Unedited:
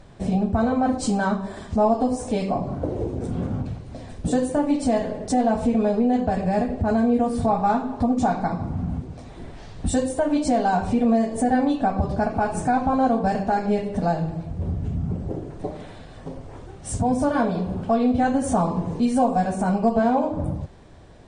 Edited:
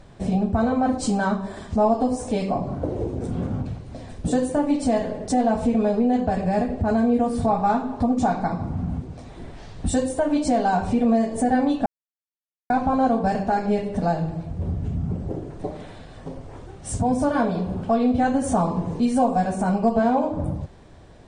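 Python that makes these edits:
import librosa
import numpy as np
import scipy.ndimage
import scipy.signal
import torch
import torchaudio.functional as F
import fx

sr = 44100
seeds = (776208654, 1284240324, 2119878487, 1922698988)

y = fx.edit(x, sr, fx.silence(start_s=11.86, length_s=0.84), tone=tone)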